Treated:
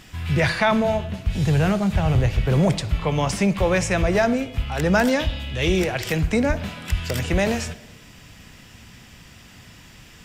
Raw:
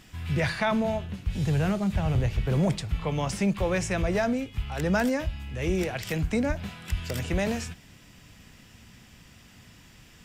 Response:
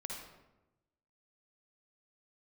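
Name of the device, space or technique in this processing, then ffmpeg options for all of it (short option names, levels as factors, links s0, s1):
filtered reverb send: -filter_complex "[0:a]asplit=2[s0][s1];[s1]highpass=f=210:w=0.5412,highpass=f=210:w=1.3066,lowpass=7800[s2];[1:a]atrim=start_sample=2205[s3];[s2][s3]afir=irnorm=-1:irlink=0,volume=0.266[s4];[s0][s4]amix=inputs=2:normalize=0,asettb=1/sr,asplit=3[s5][s6][s7];[s5]atrim=end=5.084[s8];[s6]atrim=start=5.08:end=5.79,asetpts=PTS-STARTPTS,afade=t=in:d=0.004:c=qsin,afade=t=out:st=0.706:d=0.004:c=qsin,equalizer=f=3500:w=2.2:g=12[s9];[s7]atrim=start=5.786[s10];[s8][s9]acrossfade=d=0.004:c1=hsin:c2=qsin[s11];[s11][s10]acrossfade=d=0.004:c1=qsin:c2=hsin,volume=2"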